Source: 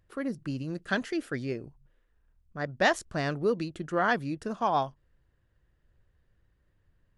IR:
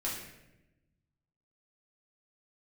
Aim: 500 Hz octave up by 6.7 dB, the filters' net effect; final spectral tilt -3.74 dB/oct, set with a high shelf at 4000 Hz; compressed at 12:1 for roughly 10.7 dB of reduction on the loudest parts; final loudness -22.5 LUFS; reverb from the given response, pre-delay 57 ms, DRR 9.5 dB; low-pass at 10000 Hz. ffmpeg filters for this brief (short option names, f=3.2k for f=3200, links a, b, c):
-filter_complex "[0:a]lowpass=10k,equalizer=f=500:t=o:g=8.5,highshelf=f=4k:g=-6,acompressor=threshold=-26dB:ratio=12,asplit=2[a][b];[1:a]atrim=start_sample=2205,adelay=57[c];[b][c]afir=irnorm=-1:irlink=0,volume=-13dB[d];[a][d]amix=inputs=2:normalize=0,volume=10dB"